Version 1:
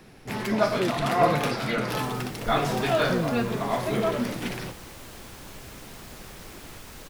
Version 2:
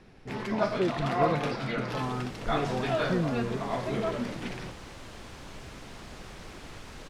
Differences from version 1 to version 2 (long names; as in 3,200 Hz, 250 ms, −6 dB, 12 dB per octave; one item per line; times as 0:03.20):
first sound −5.0 dB
master: add high-frequency loss of the air 69 metres